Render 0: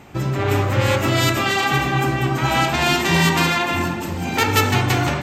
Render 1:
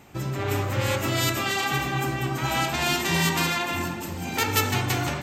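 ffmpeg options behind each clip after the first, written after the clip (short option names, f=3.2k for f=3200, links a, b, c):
-af "highshelf=f=5.6k:g=8.5,volume=-7.5dB"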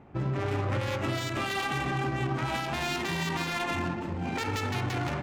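-af "adynamicsmooth=sensitivity=3:basefreq=1.3k,alimiter=limit=-21dB:level=0:latency=1:release=90"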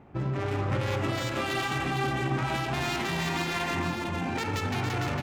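-af "aecho=1:1:455:0.562"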